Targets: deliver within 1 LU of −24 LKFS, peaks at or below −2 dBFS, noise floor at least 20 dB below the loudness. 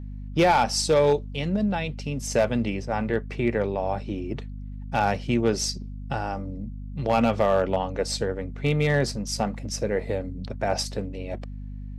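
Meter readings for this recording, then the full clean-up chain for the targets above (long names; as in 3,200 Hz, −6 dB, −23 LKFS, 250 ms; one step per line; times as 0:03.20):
share of clipped samples 0.4%; peaks flattened at −13.0 dBFS; mains hum 50 Hz; hum harmonics up to 250 Hz; level of the hum −33 dBFS; integrated loudness −26.0 LKFS; sample peak −13.0 dBFS; target loudness −24.0 LKFS
→ clipped peaks rebuilt −13 dBFS
hum removal 50 Hz, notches 5
level +2 dB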